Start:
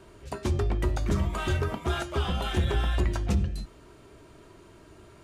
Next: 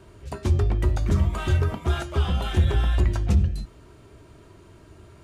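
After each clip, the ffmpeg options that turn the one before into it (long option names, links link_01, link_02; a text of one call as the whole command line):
ffmpeg -i in.wav -af "equalizer=frequency=86:width=0.81:gain=7.5" out.wav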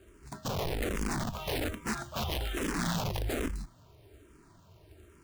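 ffmpeg -i in.wav -filter_complex "[0:a]acrusher=bits=3:mode=log:mix=0:aa=0.000001,aeval=exprs='(mod(8.91*val(0)+1,2)-1)/8.91':channel_layout=same,asplit=2[link_01][link_02];[link_02]afreqshift=-1.2[link_03];[link_01][link_03]amix=inputs=2:normalize=1,volume=-5.5dB" out.wav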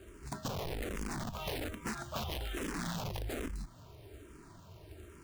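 ffmpeg -i in.wav -af "acompressor=threshold=-40dB:ratio=6,volume=4dB" out.wav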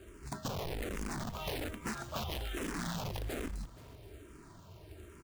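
ffmpeg -i in.wav -af "aecho=1:1:474:0.106" out.wav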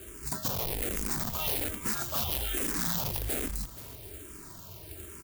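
ffmpeg -i in.wav -filter_complex "[0:a]aemphasis=mode=production:type=75fm,asplit=2[link_01][link_02];[link_02]alimiter=limit=-22.5dB:level=0:latency=1:release=17,volume=1dB[link_03];[link_01][link_03]amix=inputs=2:normalize=0,asoftclip=type=tanh:threshold=-17.5dB,volume=-1.5dB" out.wav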